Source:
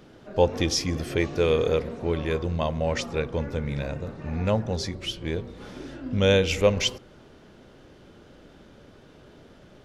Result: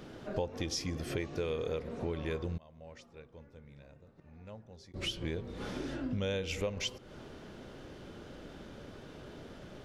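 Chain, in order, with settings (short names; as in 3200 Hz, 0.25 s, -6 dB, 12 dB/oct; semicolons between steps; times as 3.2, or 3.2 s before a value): 2.57–4.94 flipped gate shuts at -30 dBFS, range -27 dB; compressor 5:1, threshold -36 dBFS, peak gain reduction 19.5 dB; attack slew limiter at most 450 dB/s; gain +2 dB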